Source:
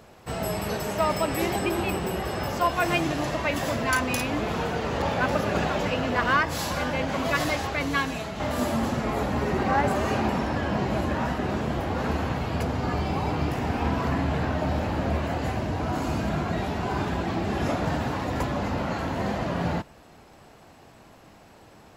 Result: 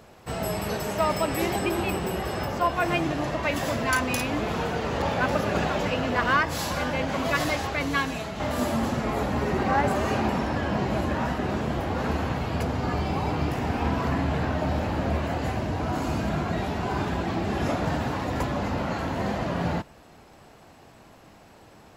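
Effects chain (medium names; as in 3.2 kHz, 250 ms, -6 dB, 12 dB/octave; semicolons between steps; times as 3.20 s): 2.45–3.43 s: treble shelf 3.7 kHz -7 dB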